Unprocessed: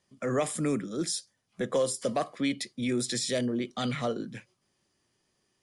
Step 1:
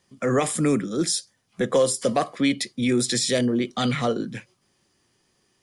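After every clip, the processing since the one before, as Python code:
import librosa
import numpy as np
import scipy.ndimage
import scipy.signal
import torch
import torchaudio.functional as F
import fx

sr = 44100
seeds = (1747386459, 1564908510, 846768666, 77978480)

y = fx.notch(x, sr, hz=610.0, q=17.0)
y = y * librosa.db_to_amplitude(7.5)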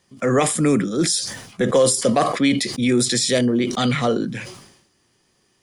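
y = fx.sustainer(x, sr, db_per_s=68.0)
y = y * librosa.db_to_amplitude(3.5)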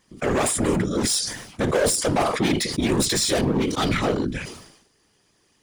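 y = np.clip(10.0 ** (18.0 / 20.0) * x, -1.0, 1.0) / 10.0 ** (18.0 / 20.0)
y = fx.whisperise(y, sr, seeds[0])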